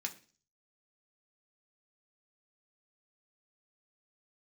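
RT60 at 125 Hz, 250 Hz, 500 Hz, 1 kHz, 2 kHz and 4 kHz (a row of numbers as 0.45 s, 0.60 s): 0.60 s, 0.50 s, 0.40 s, 0.35 s, 0.40 s, 0.50 s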